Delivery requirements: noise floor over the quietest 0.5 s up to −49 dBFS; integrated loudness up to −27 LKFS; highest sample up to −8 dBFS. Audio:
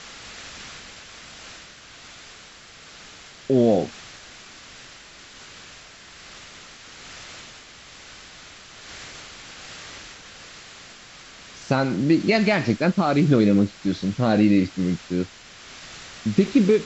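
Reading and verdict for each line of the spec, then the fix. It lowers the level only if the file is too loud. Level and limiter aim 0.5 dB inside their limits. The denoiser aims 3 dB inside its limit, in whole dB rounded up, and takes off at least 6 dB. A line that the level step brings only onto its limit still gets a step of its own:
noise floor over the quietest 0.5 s −46 dBFS: out of spec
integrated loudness −21.0 LKFS: out of spec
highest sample −5.0 dBFS: out of spec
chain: level −6.5 dB

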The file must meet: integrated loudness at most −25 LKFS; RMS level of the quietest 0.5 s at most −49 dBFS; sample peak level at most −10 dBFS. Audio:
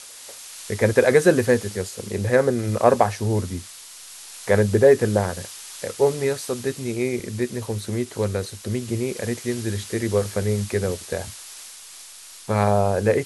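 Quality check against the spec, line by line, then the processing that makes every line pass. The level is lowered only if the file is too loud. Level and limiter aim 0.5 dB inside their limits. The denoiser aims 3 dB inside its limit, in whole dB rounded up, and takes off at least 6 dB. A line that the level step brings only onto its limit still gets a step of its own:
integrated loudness −22.5 LKFS: out of spec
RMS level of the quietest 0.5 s −43 dBFS: out of spec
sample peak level −2.5 dBFS: out of spec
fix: broadband denoise 6 dB, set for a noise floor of −43 dBFS
level −3 dB
brickwall limiter −10.5 dBFS

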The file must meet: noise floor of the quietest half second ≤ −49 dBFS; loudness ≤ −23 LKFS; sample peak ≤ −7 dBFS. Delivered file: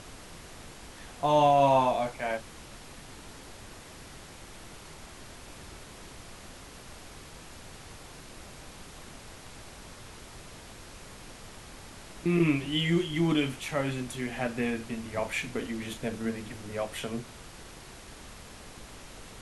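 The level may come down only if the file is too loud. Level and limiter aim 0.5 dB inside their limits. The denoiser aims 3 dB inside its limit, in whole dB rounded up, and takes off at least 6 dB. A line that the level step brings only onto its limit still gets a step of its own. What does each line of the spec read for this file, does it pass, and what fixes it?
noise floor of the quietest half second −47 dBFS: out of spec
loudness −29.0 LKFS: in spec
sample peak −12.0 dBFS: in spec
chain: broadband denoise 6 dB, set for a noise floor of −47 dBFS

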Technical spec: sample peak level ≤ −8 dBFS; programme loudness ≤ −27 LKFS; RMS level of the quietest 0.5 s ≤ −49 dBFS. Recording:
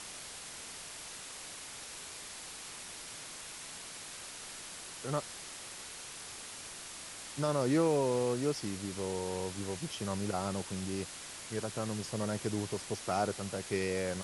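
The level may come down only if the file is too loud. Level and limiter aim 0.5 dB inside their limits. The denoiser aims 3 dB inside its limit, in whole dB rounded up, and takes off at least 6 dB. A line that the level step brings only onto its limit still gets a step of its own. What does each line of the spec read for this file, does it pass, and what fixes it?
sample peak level −18.5 dBFS: in spec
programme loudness −37.0 LKFS: in spec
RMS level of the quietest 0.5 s −46 dBFS: out of spec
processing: broadband denoise 6 dB, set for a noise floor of −46 dBFS

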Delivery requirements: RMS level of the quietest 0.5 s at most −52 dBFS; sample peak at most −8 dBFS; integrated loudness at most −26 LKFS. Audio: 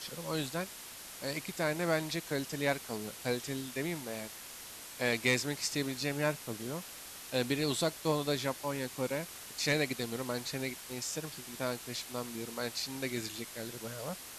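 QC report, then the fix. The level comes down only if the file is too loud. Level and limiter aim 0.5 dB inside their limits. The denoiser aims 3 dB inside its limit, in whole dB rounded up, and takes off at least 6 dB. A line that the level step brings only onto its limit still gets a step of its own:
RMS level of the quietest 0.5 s −48 dBFS: out of spec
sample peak −15.0 dBFS: in spec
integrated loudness −35.5 LKFS: in spec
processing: broadband denoise 7 dB, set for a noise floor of −48 dBFS

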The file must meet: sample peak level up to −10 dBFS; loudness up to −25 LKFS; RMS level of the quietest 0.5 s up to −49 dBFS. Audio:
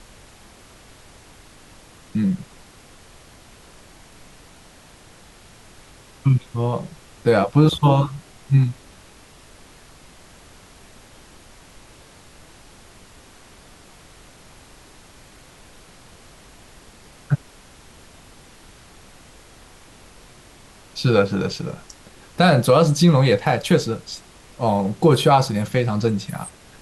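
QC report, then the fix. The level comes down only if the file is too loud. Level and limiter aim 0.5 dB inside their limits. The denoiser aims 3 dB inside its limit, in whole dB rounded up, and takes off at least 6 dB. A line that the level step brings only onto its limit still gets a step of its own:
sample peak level −4.5 dBFS: out of spec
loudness −19.5 LKFS: out of spec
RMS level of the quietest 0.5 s −47 dBFS: out of spec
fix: level −6 dB

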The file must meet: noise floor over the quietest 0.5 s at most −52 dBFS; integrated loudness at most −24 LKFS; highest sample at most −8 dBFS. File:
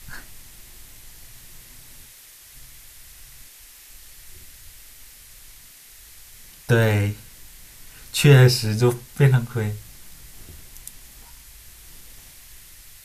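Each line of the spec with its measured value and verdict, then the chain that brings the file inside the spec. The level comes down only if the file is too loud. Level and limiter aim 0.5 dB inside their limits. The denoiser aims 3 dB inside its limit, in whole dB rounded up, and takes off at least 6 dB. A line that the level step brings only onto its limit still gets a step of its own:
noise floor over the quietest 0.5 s −47 dBFS: out of spec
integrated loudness −19.0 LKFS: out of spec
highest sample −3.5 dBFS: out of spec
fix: level −5.5 dB

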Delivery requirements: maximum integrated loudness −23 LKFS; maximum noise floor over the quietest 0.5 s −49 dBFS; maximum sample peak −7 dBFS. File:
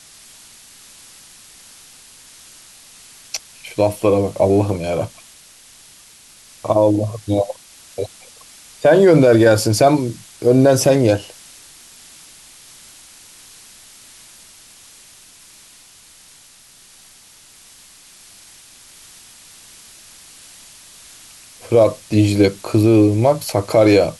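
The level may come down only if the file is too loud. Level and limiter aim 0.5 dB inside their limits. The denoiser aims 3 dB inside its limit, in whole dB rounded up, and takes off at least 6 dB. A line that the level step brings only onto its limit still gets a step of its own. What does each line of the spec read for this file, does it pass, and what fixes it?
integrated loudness −15.5 LKFS: out of spec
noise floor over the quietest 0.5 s −47 dBFS: out of spec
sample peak −3.0 dBFS: out of spec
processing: level −8 dB

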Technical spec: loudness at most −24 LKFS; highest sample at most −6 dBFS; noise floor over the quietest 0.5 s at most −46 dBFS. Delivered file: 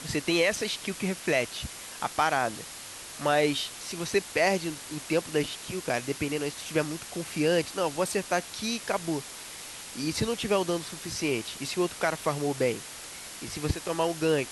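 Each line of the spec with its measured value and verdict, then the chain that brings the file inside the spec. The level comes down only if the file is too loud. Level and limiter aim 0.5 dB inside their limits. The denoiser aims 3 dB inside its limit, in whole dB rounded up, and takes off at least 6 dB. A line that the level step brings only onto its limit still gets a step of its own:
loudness −29.5 LKFS: in spec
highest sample −11.5 dBFS: in spec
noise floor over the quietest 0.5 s −43 dBFS: out of spec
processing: broadband denoise 6 dB, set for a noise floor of −43 dBFS

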